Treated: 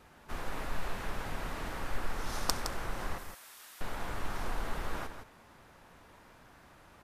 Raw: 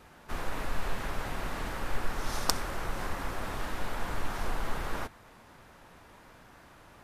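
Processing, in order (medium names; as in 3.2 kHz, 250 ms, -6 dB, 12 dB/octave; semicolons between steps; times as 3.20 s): 3.18–3.81 s: differentiator; delay 164 ms -8.5 dB; trim -3.5 dB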